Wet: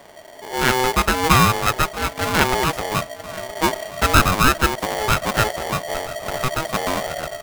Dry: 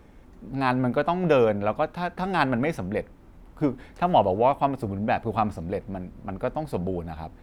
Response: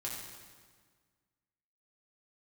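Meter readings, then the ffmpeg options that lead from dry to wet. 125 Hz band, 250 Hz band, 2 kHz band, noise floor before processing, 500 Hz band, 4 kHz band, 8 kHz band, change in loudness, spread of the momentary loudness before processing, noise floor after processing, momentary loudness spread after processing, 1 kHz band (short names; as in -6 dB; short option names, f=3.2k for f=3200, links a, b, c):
+6.0 dB, +1.5 dB, +12.5 dB, -50 dBFS, +0.5 dB, +17.5 dB, n/a, +6.0 dB, 12 LU, -40 dBFS, 12 LU, +6.0 dB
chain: -filter_complex "[0:a]asubboost=boost=6:cutoff=52,asplit=2[a][b];[b]adelay=968,lowpass=f=830:p=1,volume=-17dB,asplit=2[c][d];[d]adelay=968,lowpass=f=830:p=1,volume=0.52,asplit=2[e][f];[f]adelay=968,lowpass=f=830:p=1,volume=0.52,asplit=2[g][h];[h]adelay=968,lowpass=f=830:p=1,volume=0.52,asplit=2[i][j];[j]adelay=968,lowpass=f=830:p=1,volume=0.52[k];[c][e][g][i][k]amix=inputs=5:normalize=0[l];[a][l]amix=inputs=2:normalize=0,aeval=exprs='val(0)*sgn(sin(2*PI*640*n/s))':c=same,volume=5.5dB"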